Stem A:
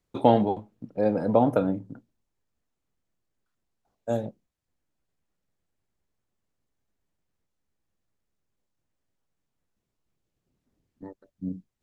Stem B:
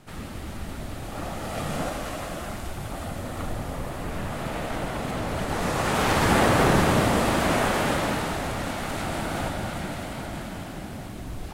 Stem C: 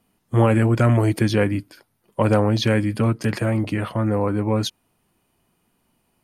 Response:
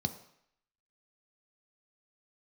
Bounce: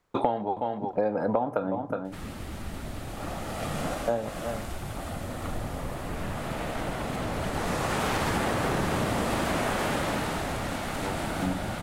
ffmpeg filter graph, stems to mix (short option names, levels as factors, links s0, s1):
-filter_complex "[0:a]equalizer=f=1100:t=o:w=2.3:g=12,volume=1.33,asplit=2[s0][s1];[s1]volume=0.168[s2];[1:a]adelay=2050,volume=0.794[s3];[s2]aecho=0:1:365:1[s4];[s0][s3][s4]amix=inputs=3:normalize=0,acompressor=threshold=0.0708:ratio=10"